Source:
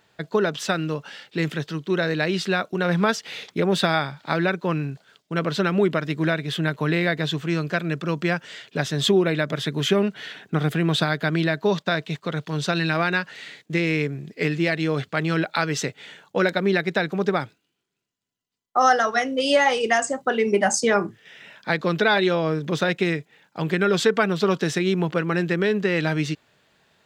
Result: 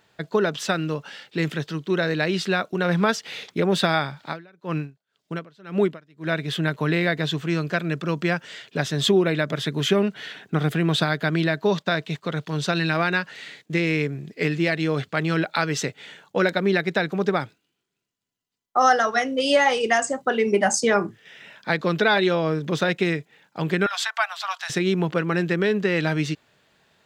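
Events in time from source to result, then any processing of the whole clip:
4.24–6.33 s: logarithmic tremolo 1.9 Hz, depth 30 dB
23.86–24.70 s: steep high-pass 690 Hz 72 dB/octave

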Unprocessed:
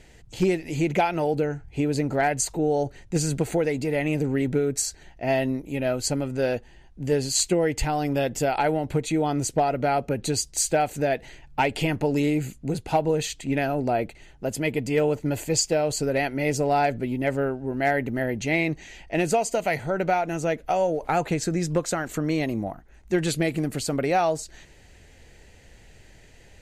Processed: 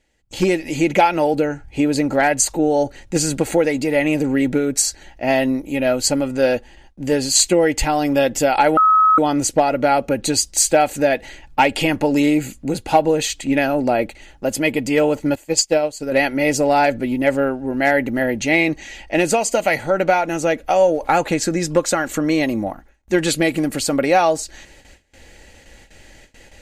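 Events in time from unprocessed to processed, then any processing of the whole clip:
8.77–9.18 s: bleep 1.28 kHz -14 dBFS
15.35–16.12 s: upward expansion 2.5:1, over -32 dBFS
whole clip: gate with hold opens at -41 dBFS; bass shelf 270 Hz -5.5 dB; comb 3.6 ms, depth 40%; trim +8 dB

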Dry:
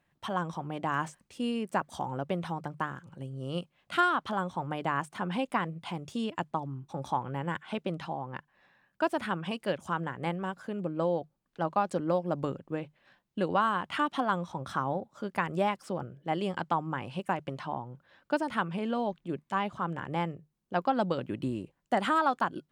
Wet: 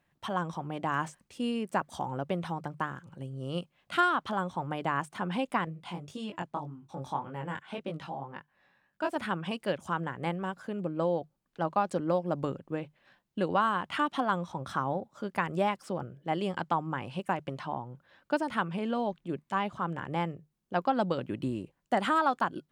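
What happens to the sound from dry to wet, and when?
5.65–9.16 s: chorus 1.8 Hz, delay 19 ms, depth 3.7 ms

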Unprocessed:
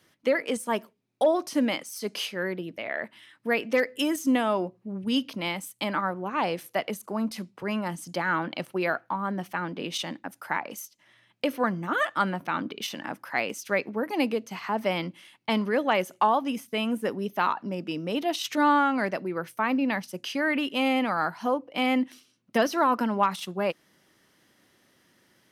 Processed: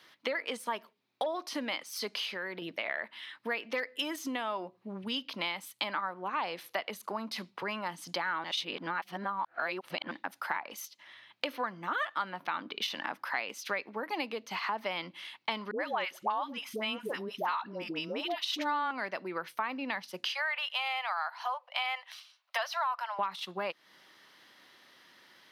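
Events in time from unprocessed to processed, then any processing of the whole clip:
2.12–2.62 s: compression 4:1, threshold -35 dBFS
8.44–10.11 s: reverse
15.71–18.91 s: phase dispersion highs, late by 92 ms, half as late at 700 Hz
20.31–23.19 s: steep high-pass 630 Hz 48 dB/octave
whole clip: ten-band graphic EQ 1 kHz +7 dB, 2 kHz +4 dB, 4 kHz +10 dB, 8 kHz -6 dB; compression 4:1, threshold -32 dBFS; high-pass 340 Hz 6 dB/octave

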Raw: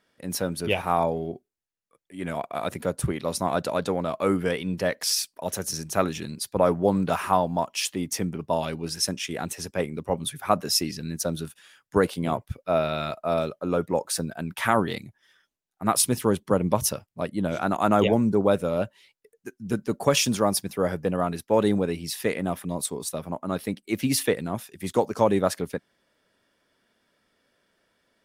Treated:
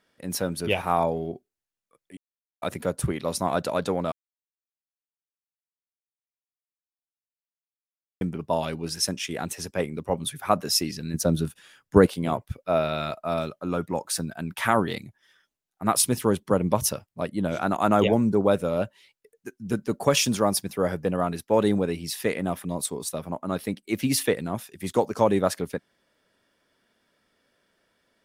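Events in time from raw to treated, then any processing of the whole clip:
2.17–2.62 s: mute
4.12–8.21 s: mute
11.14–12.06 s: bass shelf 490 Hz +8.5 dB
13.22–14.43 s: peaking EQ 490 Hz -6 dB

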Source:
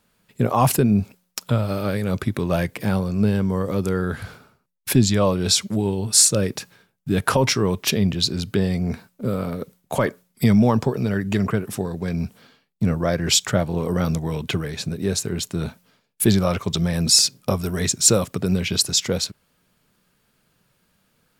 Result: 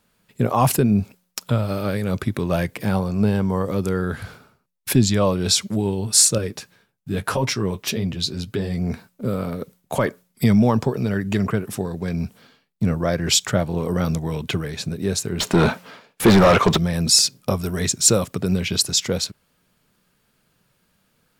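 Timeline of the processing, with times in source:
2.94–3.65 s: peaking EQ 830 Hz +6.5 dB
6.38–8.78 s: flange 1.8 Hz, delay 6.6 ms, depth 7.2 ms, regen -24%
15.40–16.77 s: overdrive pedal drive 31 dB, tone 1.4 kHz, clips at -4 dBFS

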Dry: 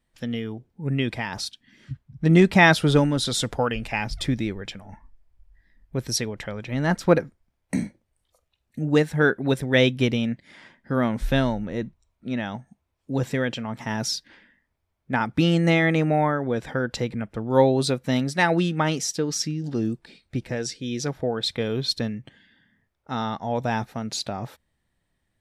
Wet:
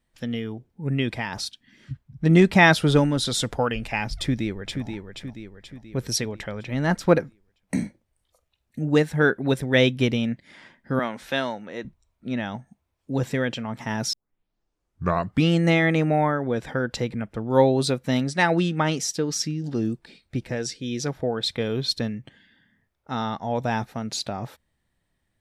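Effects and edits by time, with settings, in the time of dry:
4.18–4.85 s: echo throw 480 ms, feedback 50%, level -6 dB
10.99–11.85 s: frequency weighting A
14.13 s: tape start 1.37 s
18.23–18.99 s: steep low-pass 9.9 kHz

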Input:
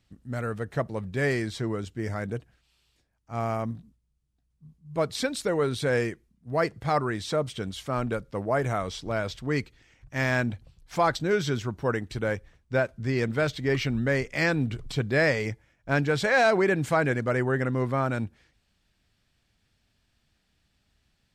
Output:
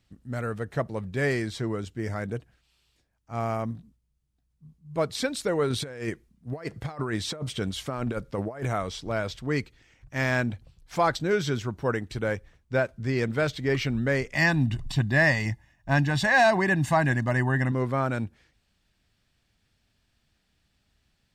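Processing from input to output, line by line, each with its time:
5.70–8.66 s: compressor with a negative ratio -30 dBFS, ratio -0.5
14.34–17.72 s: comb 1.1 ms, depth 84%

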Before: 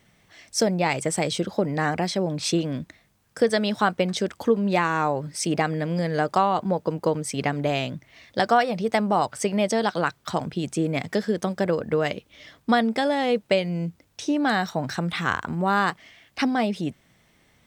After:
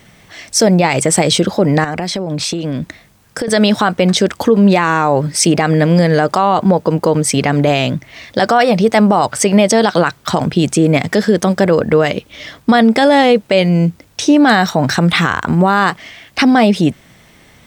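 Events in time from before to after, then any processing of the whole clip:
1.84–3.48 s: compression 12:1, threshold -31 dBFS
whole clip: loudness maximiser +16.5 dB; trim -1 dB

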